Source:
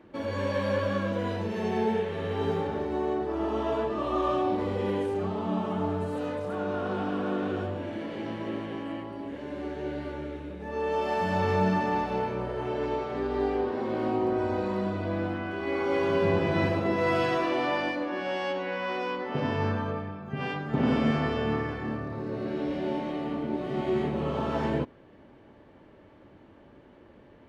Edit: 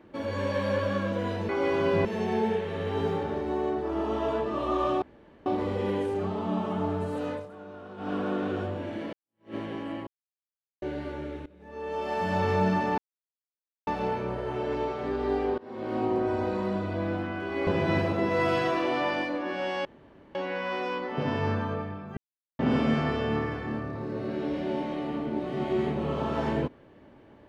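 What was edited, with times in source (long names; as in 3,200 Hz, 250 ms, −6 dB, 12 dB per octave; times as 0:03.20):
0:04.46: splice in room tone 0.44 s
0:06.33–0:07.12: duck −13 dB, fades 0.15 s
0:08.13–0:08.55: fade in exponential
0:09.07–0:09.82: silence
0:10.46–0:11.34: fade in, from −20 dB
0:11.98: splice in silence 0.89 s
0:13.69–0:14.14: fade in, from −23.5 dB
0:15.78–0:16.34: move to 0:01.49
0:18.52: splice in room tone 0.50 s
0:20.34–0:20.76: silence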